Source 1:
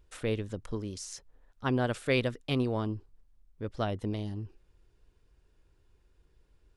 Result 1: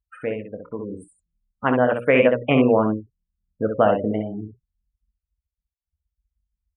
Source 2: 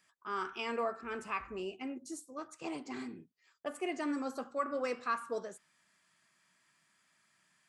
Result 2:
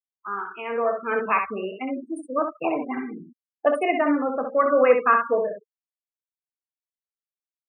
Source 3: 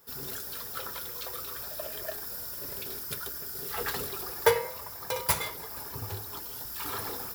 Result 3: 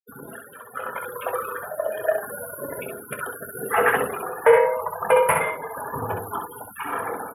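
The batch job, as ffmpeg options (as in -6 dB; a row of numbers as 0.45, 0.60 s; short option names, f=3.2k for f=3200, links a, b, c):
-filter_complex "[0:a]bandreject=f=60:t=h:w=6,bandreject=f=120:t=h:w=6,bandreject=f=180:t=h:w=6,bandreject=f=240:t=h:w=6,bandreject=f=300:t=h:w=6,bandreject=f=360:t=h:w=6,bandreject=f=420:t=h:w=6,bandreject=f=480:t=h:w=6,bandreject=f=540:t=h:w=6,bandreject=f=600:t=h:w=6,afftfilt=real='re*gte(hypot(re,im),0.01)':imag='im*gte(hypot(re,im),0.01)':win_size=1024:overlap=0.75,afftdn=nr=35:nf=-57,adynamicequalizer=threshold=0.00316:dfrequency=470:dqfactor=3.8:tfrequency=470:tqfactor=3.8:attack=5:release=100:ratio=0.375:range=2.5:mode=boostabove:tftype=bell,asplit=2[a][b];[b]acompressor=threshold=-43dB:ratio=4,volume=2dB[c];[a][c]amix=inputs=2:normalize=0,highpass=200,equalizer=f=370:t=q:w=4:g=-8,equalizer=f=620:t=q:w=4:g=4,equalizer=f=2.7k:t=q:w=4:g=-3,lowpass=f=9.1k:w=0.5412,lowpass=f=9.1k:w=1.3066,tremolo=f=0.8:d=0.45,asuperstop=centerf=5400:order=12:qfactor=0.79,aecho=1:1:24|65:0.251|0.501,dynaudnorm=f=750:g=3:m=8dB,alimiter=level_in=9.5dB:limit=-1dB:release=50:level=0:latency=1,volume=-4dB"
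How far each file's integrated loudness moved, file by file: +13.0, +15.0, +8.5 LU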